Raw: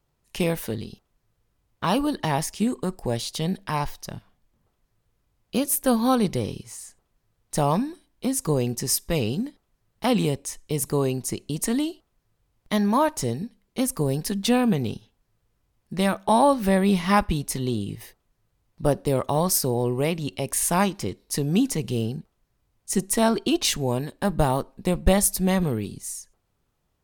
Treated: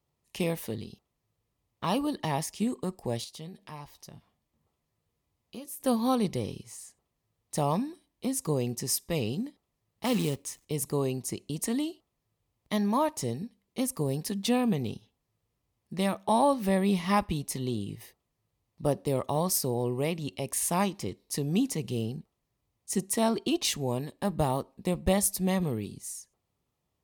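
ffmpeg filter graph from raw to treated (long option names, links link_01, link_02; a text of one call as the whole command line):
ffmpeg -i in.wav -filter_complex "[0:a]asettb=1/sr,asplit=3[link_01][link_02][link_03];[link_01]atrim=end=3.244[link_04];[link_02]atrim=start=3.24:end=5.8,asetpts=PTS-STARTPTS,afade=type=in:duration=0.004:curve=qsin,afade=type=out:start_time=2.556:duration=0.004:curve=qsin,acompressor=threshold=-43dB:ratio=2:attack=3.2:release=140:knee=1:detection=peak,asplit=2[link_05][link_06];[link_06]adelay=13,volume=-9dB[link_07];[link_05][link_07]amix=inputs=2:normalize=0,atrim=end_sample=112896[link_08];[link_03]atrim=start=5.796[link_09];[link_04][link_08]acrossfade=duration=0.004:curve1=hsin:curve2=qsin[link_10];[link_10][link_09]acrossfade=duration=0.004:curve1=qsin:curve2=hsin,asettb=1/sr,asplit=3[link_11][link_12][link_13];[link_11]atrim=end=10.054[link_14];[link_12]atrim=start=10.05:end=10.65,asetpts=PTS-STARTPTS,afade=type=in:duration=0.004:curve=qsin,afade=type=out:start_time=0.596:duration=0.004:curve=qsin,equalizer=frequency=710:width=2.4:gain=-5.5,acrusher=bits=3:mode=log:mix=0:aa=0.000001[link_15];[link_13]atrim=start=10.646[link_16];[link_14][link_15]acrossfade=duration=0.004:curve1=hsin:curve2=qsin[link_17];[link_17][link_16]acrossfade=duration=0.004:curve1=qsin:curve2=hsin,highpass=63,equalizer=frequency=1500:width_type=o:width=0.21:gain=-10.5,volume=-5.5dB" out.wav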